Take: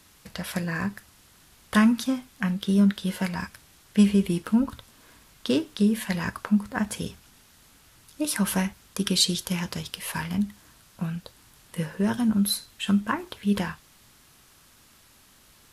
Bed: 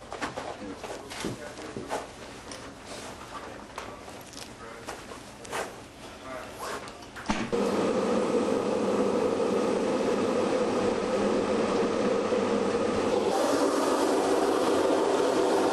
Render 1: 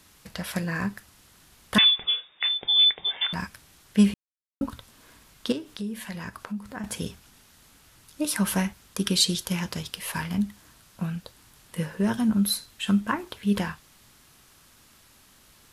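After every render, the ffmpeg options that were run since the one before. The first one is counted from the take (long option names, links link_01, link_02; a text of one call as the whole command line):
ffmpeg -i in.wav -filter_complex "[0:a]asettb=1/sr,asplit=3[link_01][link_02][link_03];[link_01]atrim=end=1.784[link_04];[link_02]atrim=start=1.78:end=3.33,asetpts=PTS-STARTPTS,afade=type=in:duration=0.004:curve=qsin,afade=type=out:start_time=1.546:duration=0.004:curve=qsin,lowpass=frequency=3100:width_type=q:width=0.5098,lowpass=frequency=3100:width_type=q:width=0.6013,lowpass=frequency=3100:width_type=q:width=0.9,lowpass=frequency=3100:width_type=q:width=2.563,afreqshift=-3700[link_05];[link_03]atrim=start=3.326[link_06];[link_04][link_05]acrossfade=duration=0.004:curve1=hsin:curve2=qsin[link_07];[link_07][link_06]acrossfade=duration=0.004:curve1=qsin:curve2=hsin,asettb=1/sr,asplit=3[link_08][link_09][link_10];[link_08]atrim=end=5.524[link_11];[link_09]atrim=start=5.52:end=6.84,asetpts=PTS-STARTPTS,afade=type=in:duration=0.004:curve=qsin,afade=type=out:start_time=1.316:duration=0.004:curve=qsin,acompressor=threshold=-38dB:ratio=2:attack=3.2:release=140:knee=1:detection=peak[link_12];[link_10]atrim=start=6.836[link_13];[link_11][link_12]acrossfade=duration=0.004:curve1=hsin:curve2=qsin[link_14];[link_14][link_13]acrossfade=duration=0.004:curve1=qsin:curve2=hsin,asplit=3[link_15][link_16][link_17];[link_15]atrim=end=4.14,asetpts=PTS-STARTPTS,afade=type=out:start_time=4.136:duration=0.004:curve=hsin[link_18];[link_16]atrim=start=4.14:end=4.61,asetpts=PTS-STARTPTS,volume=0[link_19];[link_17]atrim=start=4.61,asetpts=PTS-STARTPTS,afade=type=in:duration=0.004:curve=hsin[link_20];[link_18][link_19][link_20]concat=n=3:v=0:a=1" out.wav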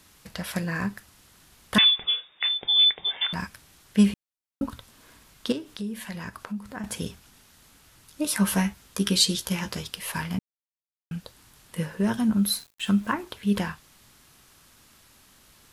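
ffmpeg -i in.wav -filter_complex "[0:a]asettb=1/sr,asplit=3[link_01][link_02][link_03];[link_01]atrim=end=8.254[link_04];[link_02]atrim=start=8.25:end=9.87,asetpts=PTS-STARTPTS,afade=type=in:duration=0.004:curve=qsin,afade=type=out:start_time=1.616:duration=0.004:curve=qsin,asplit=2[link_05][link_06];[link_06]adelay=15,volume=-7.5dB[link_07];[link_05][link_07]amix=inputs=2:normalize=0,atrim=end_sample=71442[link_08];[link_03]atrim=start=9.866[link_09];[link_04][link_08]acrossfade=duration=0.004:curve1=hsin:curve2=qsin[link_10];[link_10][link_09]acrossfade=duration=0.004:curve1=qsin:curve2=hsin,asettb=1/sr,asplit=3[link_11][link_12][link_13];[link_11]atrim=end=12.374[link_14];[link_12]atrim=start=12.37:end=13.13,asetpts=PTS-STARTPTS,afade=type=in:duration=0.004:curve=qsin,afade=type=out:start_time=0.756:duration=0.004:curve=qsin,aeval=exprs='val(0)*gte(abs(val(0)),0.00501)':channel_layout=same[link_15];[link_13]atrim=start=13.126[link_16];[link_14][link_15]acrossfade=duration=0.004:curve1=hsin:curve2=qsin[link_17];[link_17][link_16]acrossfade=duration=0.004:curve1=qsin:curve2=hsin,asplit=3[link_18][link_19][link_20];[link_18]atrim=end=10.39,asetpts=PTS-STARTPTS,afade=type=out:start_time=10.386:duration=0.004:curve=hsin[link_21];[link_19]atrim=start=10.39:end=11.11,asetpts=PTS-STARTPTS,volume=0[link_22];[link_20]atrim=start=11.11,asetpts=PTS-STARTPTS,afade=type=in:duration=0.004:curve=hsin[link_23];[link_21][link_22][link_23]concat=n=3:v=0:a=1" out.wav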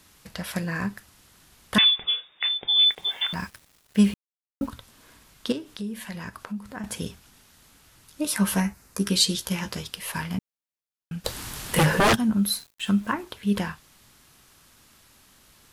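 ffmpeg -i in.wav -filter_complex "[0:a]asplit=3[link_01][link_02][link_03];[link_01]afade=type=out:start_time=2.82:duration=0.02[link_04];[link_02]acrusher=bits=7:mix=0:aa=0.5,afade=type=in:start_time=2.82:duration=0.02,afade=type=out:start_time=4.68:duration=0.02[link_05];[link_03]afade=type=in:start_time=4.68:duration=0.02[link_06];[link_04][link_05][link_06]amix=inputs=3:normalize=0,asettb=1/sr,asplit=3[link_07][link_08][link_09];[link_07]atrim=end=8.604[link_10];[link_08]atrim=start=8.6:end=9.1,asetpts=PTS-STARTPTS,afade=type=in:duration=0.004:curve=qsin,afade=type=out:start_time=0.496:duration=0.004:curve=qsin,equalizer=frequency=3300:width_type=o:width=0.51:gain=-12.5[link_11];[link_09]atrim=start=9.096[link_12];[link_10][link_11]acrossfade=duration=0.004:curve1=hsin:curve2=qsin[link_13];[link_13][link_12]acrossfade=duration=0.004:curve1=qsin:curve2=hsin,asplit=3[link_14][link_15][link_16];[link_14]afade=type=out:start_time=11.24:duration=0.02[link_17];[link_15]aeval=exprs='0.188*sin(PI/2*5.62*val(0)/0.188)':channel_layout=same,afade=type=in:start_time=11.24:duration=0.02,afade=type=out:start_time=12.14:duration=0.02[link_18];[link_16]afade=type=in:start_time=12.14:duration=0.02[link_19];[link_17][link_18][link_19]amix=inputs=3:normalize=0" out.wav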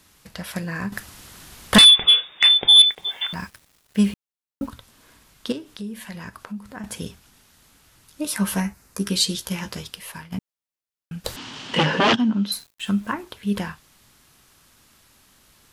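ffmpeg -i in.wav -filter_complex "[0:a]asettb=1/sr,asplit=3[link_01][link_02][link_03];[link_01]atrim=end=0.924[link_04];[link_02]atrim=start=0.92:end=2.82,asetpts=PTS-STARTPTS,afade=type=in:duration=0.004:curve=qsin,afade=type=out:start_time=1.896:duration=0.004:curve=qsin,aeval=exprs='0.501*sin(PI/2*2.51*val(0)/0.501)':channel_layout=same[link_05];[link_03]atrim=start=2.816[link_06];[link_04][link_05]acrossfade=duration=0.004:curve1=hsin:curve2=qsin[link_07];[link_07][link_06]acrossfade=duration=0.004:curve1=qsin:curve2=hsin,asettb=1/sr,asplit=3[link_08][link_09][link_10];[link_08]atrim=end=11.364[link_11];[link_09]atrim=start=11.36:end=12.52,asetpts=PTS-STARTPTS,afade=type=in:duration=0.004:curve=qsin,afade=type=out:start_time=1.156:duration=0.004:curve=qsin,highpass=160,equalizer=frequency=260:width_type=q:width=4:gain=8,equalizer=frequency=930:width_type=q:width=4:gain=3,equalizer=frequency=3000:width_type=q:width=4:gain=9,lowpass=frequency=5900:width=0.5412,lowpass=frequency=5900:width=1.3066[link_12];[link_10]atrim=start=12.516[link_13];[link_11][link_12]acrossfade=duration=0.004:curve1=hsin:curve2=qsin[link_14];[link_14][link_13]acrossfade=duration=0.004:curve1=qsin:curve2=hsin,asplit=2[link_15][link_16];[link_15]atrim=end=10.32,asetpts=PTS-STARTPTS,afade=type=out:start_time=9.88:duration=0.44:silence=0.177828[link_17];[link_16]atrim=start=10.32,asetpts=PTS-STARTPTS,afade=type=in:duration=0.004:curve=hsin:silence=0.177828[link_18];[link_17][link_18]concat=n=2:v=0:a=1" out.wav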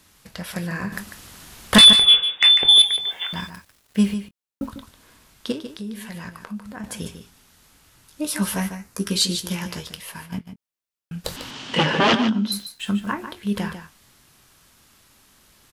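ffmpeg -i in.wav -filter_complex "[0:a]asplit=2[link_01][link_02];[link_02]adelay=23,volume=-13.5dB[link_03];[link_01][link_03]amix=inputs=2:normalize=0,asplit=2[link_04][link_05];[link_05]aecho=0:1:147:0.316[link_06];[link_04][link_06]amix=inputs=2:normalize=0" out.wav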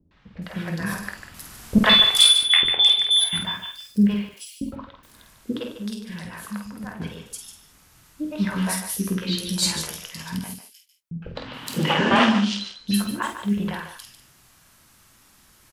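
ffmpeg -i in.wav -filter_complex "[0:a]asplit=2[link_01][link_02];[link_02]adelay=49,volume=-6dB[link_03];[link_01][link_03]amix=inputs=2:normalize=0,acrossover=split=430|3600[link_04][link_05][link_06];[link_05]adelay=110[link_07];[link_06]adelay=420[link_08];[link_04][link_07][link_08]amix=inputs=3:normalize=0" out.wav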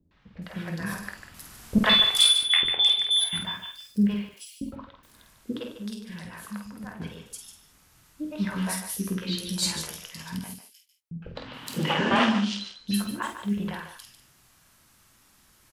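ffmpeg -i in.wav -af "volume=-4.5dB" out.wav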